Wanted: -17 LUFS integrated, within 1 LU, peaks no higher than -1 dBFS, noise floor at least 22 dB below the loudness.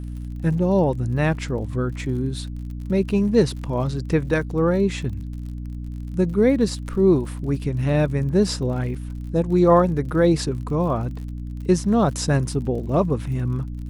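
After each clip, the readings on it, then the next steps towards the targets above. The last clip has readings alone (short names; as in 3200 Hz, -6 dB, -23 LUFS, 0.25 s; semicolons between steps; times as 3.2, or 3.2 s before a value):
ticks 48/s; hum 60 Hz; harmonics up to 300 Hz; hum level -28 dBFS; loudness -22.0 LUFS; peak -4.5 dBFS; loudness target -17.0 LUFS
-> de-click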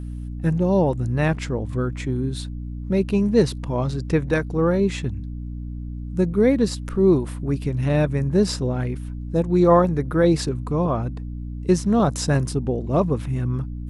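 ticks 0/s; hum 60 Hz; harmonics up to 300 Hz; hum level -28 dBFS
-> notches 60/120/180/240/300 Hz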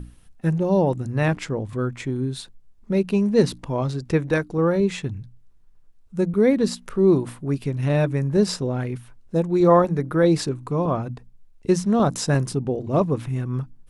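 hum none; loudness -22.5 LUFS; peak -4.5 dBFS; loudness target -17.0 LUFS
-> gain +5.5 dB; limiter -1 dBFS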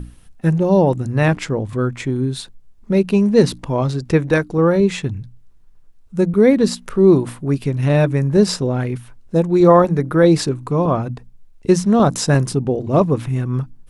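loudness -17.0 LUFS; peak -1.0 dBFS; noise floor -45 dBFS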